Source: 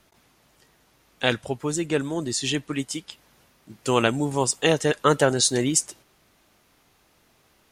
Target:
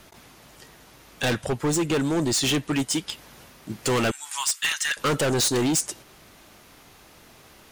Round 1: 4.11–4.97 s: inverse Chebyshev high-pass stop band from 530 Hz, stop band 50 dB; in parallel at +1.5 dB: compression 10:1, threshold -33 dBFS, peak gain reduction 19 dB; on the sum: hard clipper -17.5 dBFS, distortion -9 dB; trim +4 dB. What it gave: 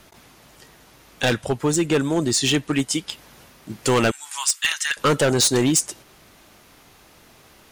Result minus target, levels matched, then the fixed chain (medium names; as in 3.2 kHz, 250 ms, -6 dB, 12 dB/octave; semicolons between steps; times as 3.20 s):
hard clipper: distortion -4 dB
4.11–4.97 s: inverse Chebyshev high-pass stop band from 530 Hz, stop band 50 dB; in parallel at +1.5 dB: compression 10:1, threshold -33 dBFS, peak gain reduction 19 dB; on the sum: hard clipper -24 dBFS, distortion -4 dB; trim +4 dB